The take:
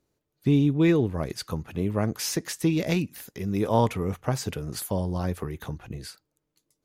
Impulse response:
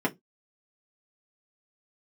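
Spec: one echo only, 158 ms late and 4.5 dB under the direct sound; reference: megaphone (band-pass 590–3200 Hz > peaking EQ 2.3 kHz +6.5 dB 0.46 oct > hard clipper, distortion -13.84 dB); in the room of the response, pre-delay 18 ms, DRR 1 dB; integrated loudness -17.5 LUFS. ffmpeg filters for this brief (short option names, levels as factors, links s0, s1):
-filter_complex "[0:a]aecho=1:1:158:0.596,asplit=2[s0][s1];[1:a]atrim=start_sample=2205,adelay=18[s2];[s1][s2]afir=irnorm=-1:irlink=0,volume=0.266[s3];[s0][s3]amix=inputs=2:normalize=0,highpass=590,lowpass=3200,equalizer=f=2300:t=o:w=0.46:g=6.5,asoftclip=type=hard:threshold=0.0891,volume=4.22"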